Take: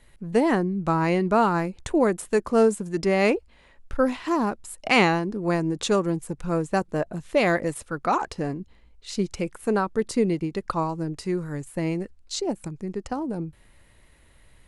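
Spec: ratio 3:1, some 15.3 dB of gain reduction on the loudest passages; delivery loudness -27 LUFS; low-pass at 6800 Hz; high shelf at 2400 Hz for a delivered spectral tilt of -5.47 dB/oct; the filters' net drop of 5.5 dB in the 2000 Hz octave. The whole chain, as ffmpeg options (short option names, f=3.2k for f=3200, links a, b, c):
-af "lowpass=6.8k,equalizer=f=2k:t=o:g=-9,highshelf=f=2.4k:g=4,acompressor=threshold=-37dB:ratio=3,volume=11dB"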